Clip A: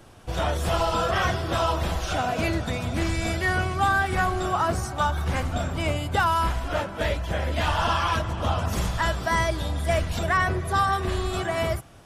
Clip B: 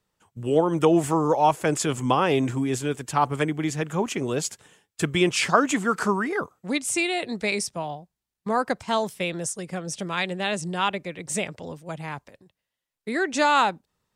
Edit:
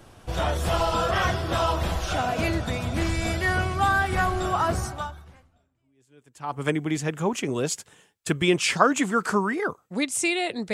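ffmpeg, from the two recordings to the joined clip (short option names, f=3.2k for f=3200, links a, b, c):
-filter_complex "[0:a]apad=whole_dur=10.73,atrim=end=10.73,atrim=end=6.66,asetpts=PTS-STARTPTS[a];[1:a]atrim=start=1.61:end=7.46,asetpts=PTS-STARTPTS[b];[a][b]acrossfade=d=1.78:c1=exp:c2=exp"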